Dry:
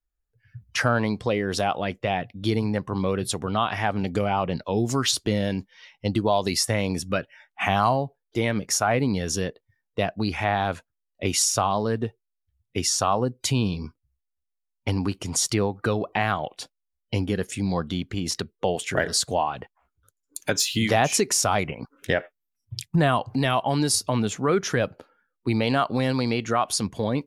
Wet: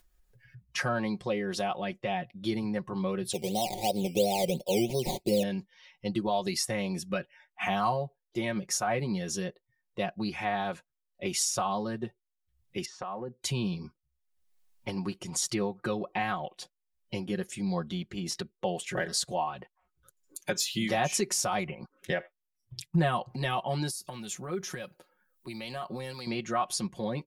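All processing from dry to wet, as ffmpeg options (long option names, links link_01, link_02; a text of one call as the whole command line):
ffmpeg -i in.wav -filter_complex "[0:a]asettb=1/sr,asplit=3[link_01][link_02][link_03];[link_01]atrim=end=3.334[link_04];[link_02]atrim=start=3.33:end=5.43,asetpts=PTS-STARTPTS,afade=type=in:duration=0.004:curve=qsin,afade=type=out:start_time=2.096:duration=0.004:curve=qsin,equalizer=frequency=500:width=1.7:gain=9,acrusher=samples=13:mix=1:aa=0.000001:lfo=1:lforange=7.8:lforate=2.9,asuperstop=centerf=1400:order=8:qfactor=0.98[link_05];[link_03]atrim=start=5.426[link_06];[link_04][link_05]acrossfade=duration=0.004:curve1=hsin:curve2=qsin[link_07];[link_07][link_06]acrossfade=duration=0.004:curve1=qsin:curve2=hsin,asettb=1/sr,asplit=3[link_08][link_09][link_10];[link_08]atrim=end=12.854[link_11];[link_09]atrim=start=12.85:end=13.42,asetpts=PTS-STARTPTS,afade=type=in:duration=0.004:curve=qsin,afade=type=out:start_time=0.566:duration=0.004:curve=qsin,highpass=140,lowpass=2000,acompressor=threshold=-25dB:ratio=5:attack=3.2:release=140:knee=1:detection=peak[link_12];[link_10]atrim=start=13.416[link_13];[link_11][link_12]acrossfade=duration=0.004:curve1=hsin:curve2=qsin[link_14];[link_14][link_13]acrossfade=duration=0.004:curve1=qsin:curve2=hsin,asettb=1/sr,asplit=3[link_15][link_16][link_17];[link_15]atrim=end=23.904[link_18];[link_16]atrim=start=23.9:end=26.27,asetpts=PTS-STARTPTS,afade=type=in:duration=0.004:curve=qsin,afade=type=out:start_time=2.366:duration=0.004:curve=qsin,aemphasis=mode=production:type=50fm,acompressor=threshold=-23dB:ratio=5:attack=3.2:release=140:knee=1:detection=peak,acrossover=split=1400[link_19][link_20];[link_19]aeval=exprs='val(0)*(1-0.5/2+0.5/2*cos(2*PI*1.5*n/s))':channel_layout=same[link_21];[link_20]aeval=exprs='val(0)*(1-0.5/2-0.5/2*cos(2*PI*1.5*n/s))':channel_layout=same[link_22];[link_21][link_22]amix=inputs=2:normalize=0[link_23];[link_17]atrim=start=26.266[link_24];[link_18][link_23]acrossfade=duration=0.004:curve1=hsin:curve2=qsin[link_25];[link_25][link_24]acrossfade=duration=0.004:curve1=qsin:curve2=hsin,bandreject=frequency=1400:width=15,aecho=1:1:5.5:0.82,acompressor=mode=upward:threshold=-39dB:ratio=2.5,volume=-9dB" out.wav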